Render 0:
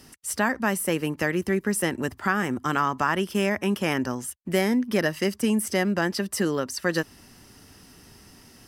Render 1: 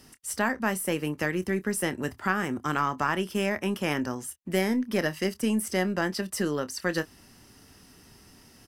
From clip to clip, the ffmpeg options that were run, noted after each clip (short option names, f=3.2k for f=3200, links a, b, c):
-filter_complex "[0:a]aeval=exprs='0.376*(cos(1*acos(clip(val(0)/0.376,-1,1)))-cos(1*PI/2))+0.0335*(cos(2*acos(clip(val(0)/0.376,-1,1)))-cos(2*PI/2))':c=same,asplit=2[a][b];[b]adelay=27,volume=-13.5dB[c];[a][c]amix=inputs=2:normalize=0,volume=-3.5dB"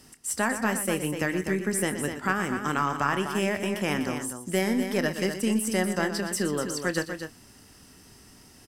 -filter_complex "[0:a]equalizer=f=7.9k:w=2.9:g=6,asplit=2[a][b];[b]aecho=0:1:119.5|247.8:0.282|0.398[c];[a][c]amix=inputs=2:normalize=0"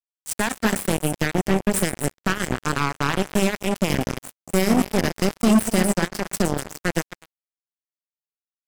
-af "bass=f=250:g=14,treble=f=4k:g=6,acrusher=bits=2:mix=0:aa=0.5"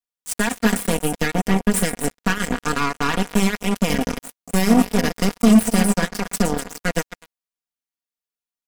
-af "aecho=1:1:4.2:0.73"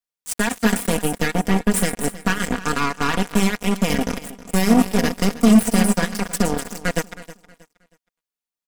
-af "aecho=1:1:317|634|951:0.141|0.0424|0.0127"